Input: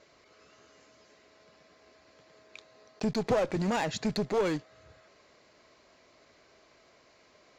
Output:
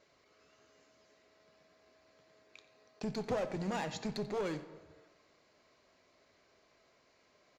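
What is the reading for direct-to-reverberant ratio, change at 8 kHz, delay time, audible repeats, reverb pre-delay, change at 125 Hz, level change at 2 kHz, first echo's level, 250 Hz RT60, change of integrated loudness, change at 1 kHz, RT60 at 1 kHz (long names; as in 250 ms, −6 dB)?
9.5 dB, −8.0 dB, 89 ms, 1, 3 ms, −7.5 dB, −7.5 dB, −17.0 dB, 1.3 s, −7.5 dB, −7.5 dB, 1.4 s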